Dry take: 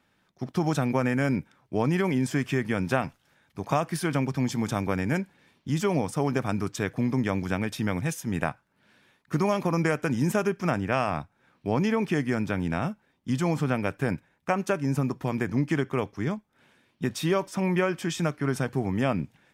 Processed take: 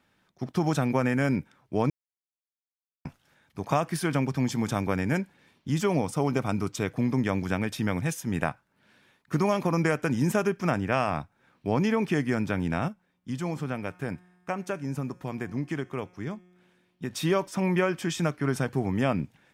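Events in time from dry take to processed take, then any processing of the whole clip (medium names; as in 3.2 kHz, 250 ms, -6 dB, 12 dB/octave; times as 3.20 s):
1.90–3.05 s: mute
6.05–6.94 s: band-stop 1.7 kHz, Q 7.2
12.88–17.13 s: feedback comb 180 Hz, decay 1.6 s, mix 50%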